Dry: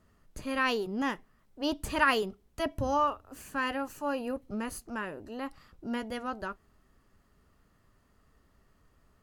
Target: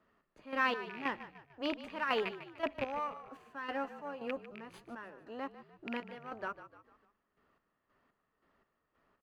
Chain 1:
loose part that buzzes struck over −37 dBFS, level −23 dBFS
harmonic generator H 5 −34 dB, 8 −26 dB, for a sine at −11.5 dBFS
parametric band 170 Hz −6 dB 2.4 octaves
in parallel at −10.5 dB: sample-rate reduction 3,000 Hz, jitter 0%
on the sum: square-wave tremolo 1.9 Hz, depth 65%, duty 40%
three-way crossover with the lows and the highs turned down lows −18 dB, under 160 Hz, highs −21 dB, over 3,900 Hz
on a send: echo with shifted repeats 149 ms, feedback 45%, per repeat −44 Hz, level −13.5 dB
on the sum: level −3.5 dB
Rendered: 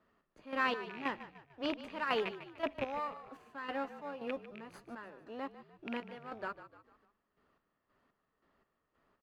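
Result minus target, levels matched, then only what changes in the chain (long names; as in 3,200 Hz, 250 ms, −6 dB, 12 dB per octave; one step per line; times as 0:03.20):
sample-rate reduction: distortion +10 dB
change: sample-rate reduction 7,200 Hz, jitter 0%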